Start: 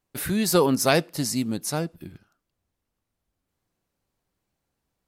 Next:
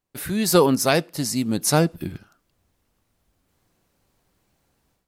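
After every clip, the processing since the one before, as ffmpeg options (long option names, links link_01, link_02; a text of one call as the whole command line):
ffmpeg -i in.wav -af "dynaudnorm=framelen=290:gausssize=3:maxgain=14dB,volume=-2.5dB" out.wav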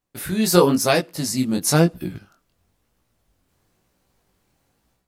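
ffmpeg -i in.wav -af "flanger=delay=16:depth=7.3:speed=1,volume=4dB" out.wav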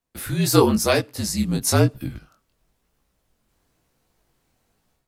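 ffmpeg -i in.wav -af "afreqshift=-48,volume=-1dB" out.wav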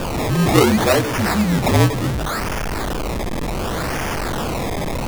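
ffmpeg -i in.wav -af "aeval=exprs='val(0)+0.5*0.15*sgn(val(0))':channel_layout=same,acrusher=samples=21:mix=1:aa=0.000001:lfo=1:lforange=21:lforate=0.68" out.wav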